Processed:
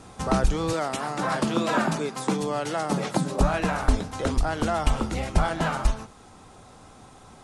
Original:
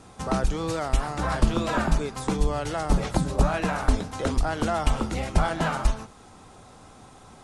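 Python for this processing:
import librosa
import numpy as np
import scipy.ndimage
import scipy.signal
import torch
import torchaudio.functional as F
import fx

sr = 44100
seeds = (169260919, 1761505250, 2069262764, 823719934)

y = fx.highpass(x, sr, hz=150.0, slope=24, at=(0.73, 3.41))
y = fx.rider(y, sr, range_db=10, speed_s=2.0)
y = y * 10.0 ** (1.0 / 20.0)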